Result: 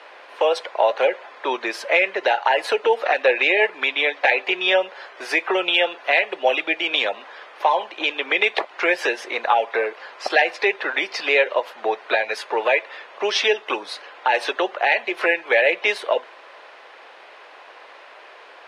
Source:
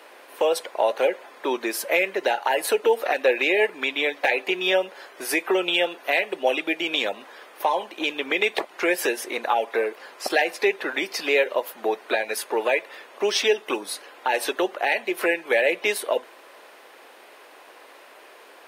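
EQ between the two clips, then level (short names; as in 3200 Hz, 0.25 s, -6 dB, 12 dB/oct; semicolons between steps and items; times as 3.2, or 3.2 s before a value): air absorption 64 m; three-band isolator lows -13 dB, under 470 Hz, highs -13 dB, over 5900 Hz; +5.5 dB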